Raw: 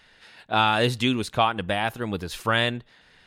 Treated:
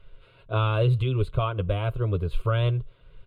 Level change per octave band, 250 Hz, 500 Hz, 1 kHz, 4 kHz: -7.0 dB, -1.5 dB, -9.0 dB, -12.0 dB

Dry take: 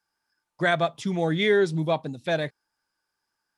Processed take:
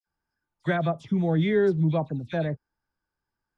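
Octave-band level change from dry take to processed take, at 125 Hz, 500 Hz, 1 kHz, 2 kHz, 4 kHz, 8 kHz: +4.5 dB, -2.0 dB, -4.0 dB, -7.0 dB, -10.5 dB, no reading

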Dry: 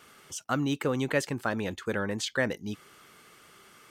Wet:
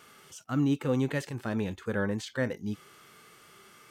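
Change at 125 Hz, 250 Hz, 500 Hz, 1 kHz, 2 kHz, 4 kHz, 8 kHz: +3.0 dB, +2.0 dB, -2.0 dB, -5.5 dB, -5.0 dB, -7.0 dB, -8.0 dB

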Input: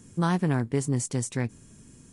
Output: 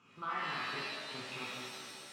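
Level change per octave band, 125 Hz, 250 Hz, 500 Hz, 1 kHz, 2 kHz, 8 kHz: -28.0 dB, -23.0 dB, -15.5 dB, -5.0 dB, -1.0 dB, -17.0 dB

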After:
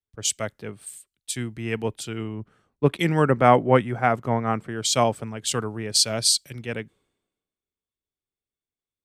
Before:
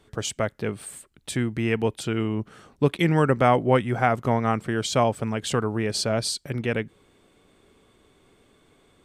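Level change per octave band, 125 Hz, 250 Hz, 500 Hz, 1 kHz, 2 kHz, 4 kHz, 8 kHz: -1.5 dB, -1.5 dB, 0.0 dB, +1.5 dB, -0.5 dB, +6.0 dB, +8.0 dB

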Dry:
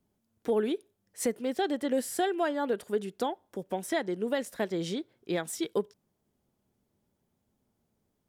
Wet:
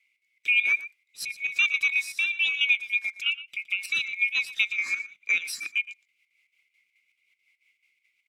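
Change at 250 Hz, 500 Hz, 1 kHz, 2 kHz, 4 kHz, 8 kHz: under -30 dB, under -30 dB, under -15 dB, +18.0 dB, +12.5 dB, -0.5 dB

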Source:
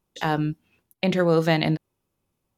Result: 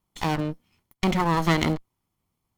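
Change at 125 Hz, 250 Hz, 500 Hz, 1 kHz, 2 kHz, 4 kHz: -1.5 dB, -1.5 dB, -6.5 dB, +2.5 dB, -1.0 dB, -1.0 dB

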